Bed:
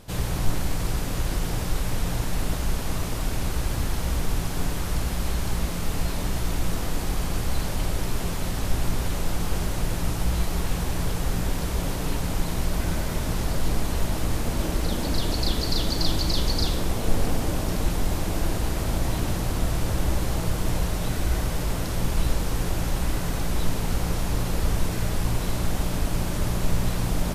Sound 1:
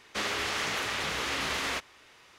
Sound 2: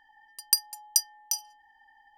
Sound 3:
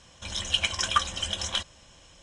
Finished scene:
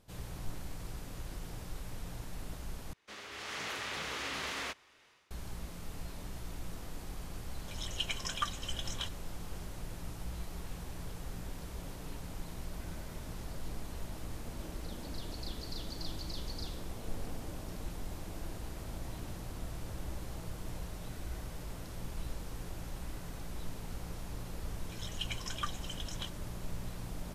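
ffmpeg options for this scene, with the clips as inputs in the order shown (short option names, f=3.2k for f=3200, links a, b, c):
-filter_complex "[3:a]asplit=2[a][b];[0:a]volume=-17dB[c];[1:a]dynaudnorm=f=360:g=3:m=11dB[d];[c]asplit=2[e][f];[e]atrim=end=2.934[g];[d]atrim=end=2.38,asetpts=PTS-STARTPTS,volume=-18dB[h];[f]atrim=start=5.306[i];[a]atrim=end=2.22,asetpts=PTS-STARTPTS,volume=-11dB,afade=t=in:d=0.004:c=hsin,afade=t=out:st=2.216:d=0.004:c=hsin,adelay=328986S[j];[b]atrim=end=2.22,asetpts=PTS-STARTPTS,volume=-14.5dB,afade=t=in:d=0.004:c=hsin,afade=t=out:st=2.216:d=0.004:c=hsin,adelay=24670[k];[g][h]acrossfade=d=0.004:c1=hsin:c2=hsin[l];[l][i]acrossfade=d=0.004:c1=hsin:c2=hsin[m];[m][j][k]amix=inputs=3:normalize=0"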